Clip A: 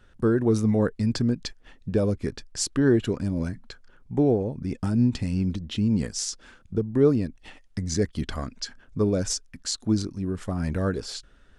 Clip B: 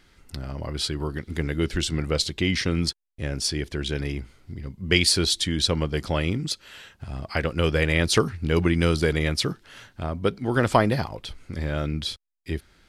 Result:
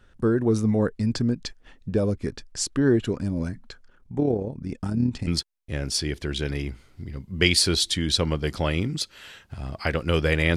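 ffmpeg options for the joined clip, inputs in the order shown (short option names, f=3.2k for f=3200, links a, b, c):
-filter_complex "[0:a]asplit=3[a][b][c];[a]afade=t=out:st=3.86:d=0.02[d];[b]tremolo=f=36:d=0.519,afade=t=in:st=3.86:d=0.02,afade=t=out:st=5.27:d=0.02[e];[c]afade=t=in:st=5.27:d=0.02[f];[d][e][f]amix=inputs=3:normalize=0,apad=whole_dur=10.56,atrim=end=10.56,atrim=end=5.272[g];[1:a]atrim=start=2.768:end=8.06[h];[g][h]acrossfade=d=0.004:c1=hsin:c2=hsin"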